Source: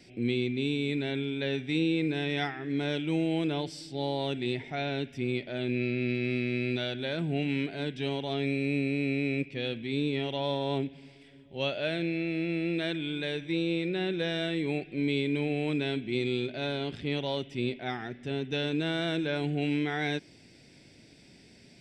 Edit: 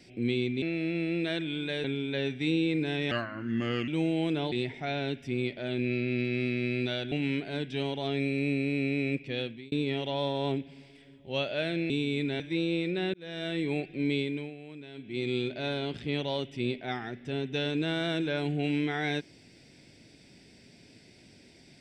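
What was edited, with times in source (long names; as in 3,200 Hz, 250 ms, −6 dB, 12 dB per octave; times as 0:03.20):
0:00.62–0:01.12: swap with 0:12.16–0:13.38
0:02.39–0:03.02: play speed 82%
0:03.66–0:04.42: remove
0:07.02–0:07.38: remove
0:09.67–0:09.98: fade out
0:14.12–0:14.57: fade in
0:15.12–0:16.32: duck −15.5 dB, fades 0.41 s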